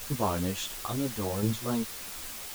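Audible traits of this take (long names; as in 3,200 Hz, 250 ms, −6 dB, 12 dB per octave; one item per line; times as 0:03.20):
chopped level 1.4 Hz, depth 60%, duty 20%
a quantiser's noise floor 8 bits, dither triangular
a shimmering, thickened sound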